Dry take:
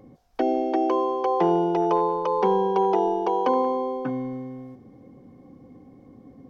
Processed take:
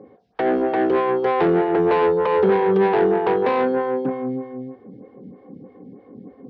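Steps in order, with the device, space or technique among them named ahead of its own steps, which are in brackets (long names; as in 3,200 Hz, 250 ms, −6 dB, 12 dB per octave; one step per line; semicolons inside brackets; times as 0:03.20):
vibe pedal into a guitar amplifier (phaser with staggered stages 3.2 Hz; tube saturation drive 25 dB, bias 0.4; loudspeaker in its box 100–4,200 Hz, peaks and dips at 190 Hz +9 dB, 430 Hz +9 dB, 1,700 Hz +5 dB)
level +7.5 dB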